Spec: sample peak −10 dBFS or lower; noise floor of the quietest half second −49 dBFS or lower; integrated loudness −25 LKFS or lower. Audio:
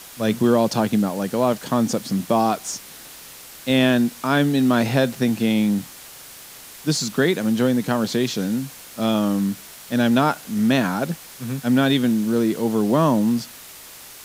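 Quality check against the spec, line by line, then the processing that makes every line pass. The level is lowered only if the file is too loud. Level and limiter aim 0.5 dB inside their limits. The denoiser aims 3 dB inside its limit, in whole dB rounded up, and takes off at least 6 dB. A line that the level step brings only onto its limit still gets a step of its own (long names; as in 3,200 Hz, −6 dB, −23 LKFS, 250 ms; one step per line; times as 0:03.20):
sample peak −4.5 dBFS: out of spec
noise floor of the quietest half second −41 dBFS: out of spec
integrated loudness −21.0 LKFS: out of spec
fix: broadband denoise 7 dB, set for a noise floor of −41 dBFS
level −4.5 dB
brickwall limiter −10.5 dBFS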